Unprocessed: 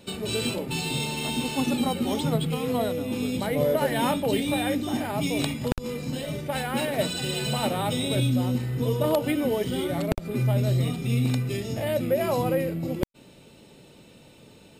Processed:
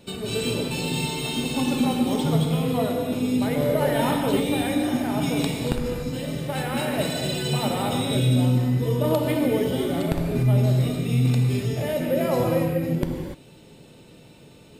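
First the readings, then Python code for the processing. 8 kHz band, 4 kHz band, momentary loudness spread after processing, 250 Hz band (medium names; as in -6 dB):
+1.0 dB, +1.0 dB, 6 LU, +3.5 dB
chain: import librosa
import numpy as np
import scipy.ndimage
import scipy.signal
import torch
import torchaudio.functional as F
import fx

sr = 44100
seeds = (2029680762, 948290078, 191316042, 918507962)

y = fx.low_shelf(x, sr, hz=350.0, db=3.0)
y = fx.rev_gated(y, sr, seeds[0], gate_ms=320, shape='flat', drr_db=1.0)
y = F.gain(torch.from_numpy(y), -1.5).numpy()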